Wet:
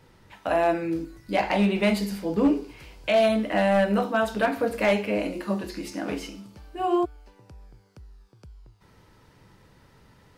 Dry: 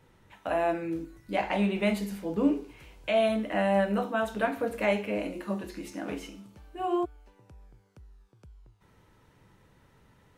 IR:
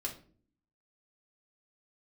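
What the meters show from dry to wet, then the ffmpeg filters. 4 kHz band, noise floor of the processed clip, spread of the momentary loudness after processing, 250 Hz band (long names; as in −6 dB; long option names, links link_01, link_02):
+6.0 dB, −58 dBFS, 13 LU, +4.5 dB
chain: -af "equalizer=frequency=4800:width_type=o:width=0.33:gain=8,asoftclip=type=hard:threshold=-19.5dB,volume=5dB"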